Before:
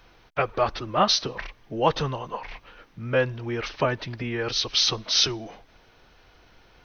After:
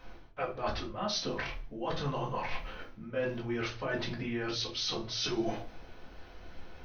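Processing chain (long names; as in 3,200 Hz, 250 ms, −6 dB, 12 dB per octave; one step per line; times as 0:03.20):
reversed playback
downward compressor 12 to 1, threshold −35 dBFS, peak gain reduction 20.5 dB
reversed playback
rectangular room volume 200 cubic metres, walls furnished, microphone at 2 metres
one half of a high-frequency compander decoder only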